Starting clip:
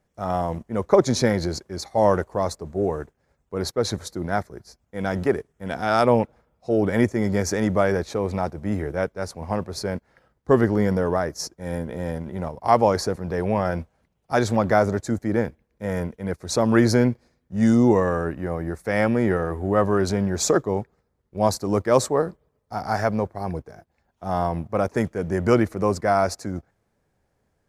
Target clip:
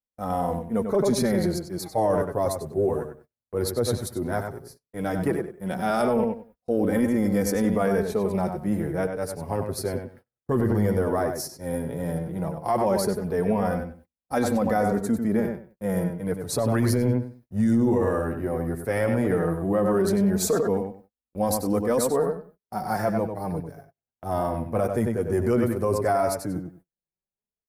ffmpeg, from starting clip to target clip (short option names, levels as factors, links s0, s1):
-filter_complex "[0:a]acrossover=split=730[s0][s1];[s0]acontrast=22[s2];[s2][s1]amix=inputs=2:normalize=0,asplit=2[s3][s4];[s4]adelay=96,lowpass=f=4100:p=1,volume=0.473,asplit=2[s5][s6];[s6]adelay=96,lowpass=f=4100:p=1,volume=0.21,asplit=2[s7][s8];[s8]adelay=96,lowpass=f=4100:p=1,volume=0.21[s9];[s3][s5][s7][s9]amix=inputs=4:normalize=0,flanger=delay=3.8:depth=4.6:regen=13:speed=0.14:shape=sinusoidal,alimiter=limit=0.224:level=0:latency=1:release=15,aexciter=amount=5.9:drive=5.5:freq=9000,agate=range=0.0316:threshold=0.00447:ratio=16:detection=peak,volume=0.841"